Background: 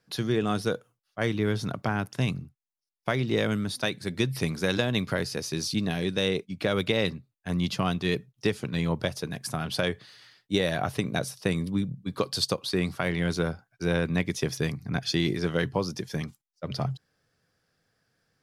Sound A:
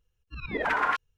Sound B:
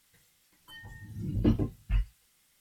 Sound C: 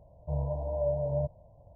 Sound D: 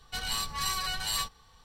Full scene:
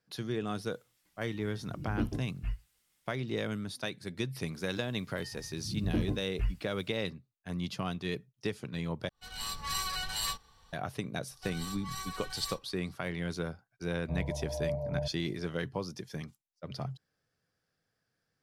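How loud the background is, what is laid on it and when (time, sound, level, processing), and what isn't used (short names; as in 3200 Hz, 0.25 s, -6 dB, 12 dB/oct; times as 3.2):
background -8.5 dB
0.53 add B -7 dB
4.49 add B -3 dB, fades 0.10 s + limiter -18 dBFS
9.09 replace with D -3 dB + opening faded in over 0.52 s
11.3 add D -13 dB + comb 2.6 ms, depth 89%
13.81 add C -5 dB
not used: A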